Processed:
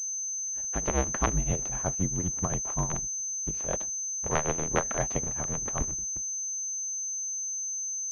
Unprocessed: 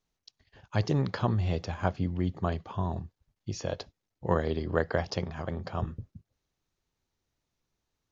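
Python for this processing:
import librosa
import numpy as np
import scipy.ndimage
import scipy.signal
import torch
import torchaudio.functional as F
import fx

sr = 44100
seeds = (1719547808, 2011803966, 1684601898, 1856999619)

y = fx.cycle_switch(x, sr, every=2, mode='inverted')
y = fx.vibrato(y, sr, rate_hz=0.61, depth_cents=8.9)
y = fx.granulator(y, sr, seeds[0], grain_ms=172.0, per_s=7.7, spray_ms=17.0, spread_st=0)
y = fx.pwm(y, sr, carrier_hz=6200.0)
y = y * 10.0 ** (2.0 / 20.0)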